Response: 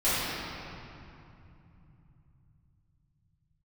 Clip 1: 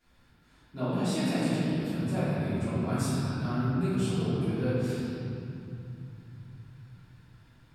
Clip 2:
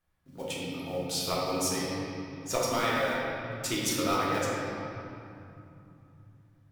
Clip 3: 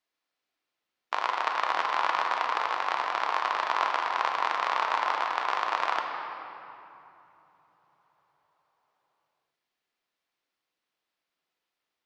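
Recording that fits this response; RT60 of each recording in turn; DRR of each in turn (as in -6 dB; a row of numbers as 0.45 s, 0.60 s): 1; 2.8 s, 2.7 s, no single decay rate; -16.0 dB, -6.5 dB, 1.5 dB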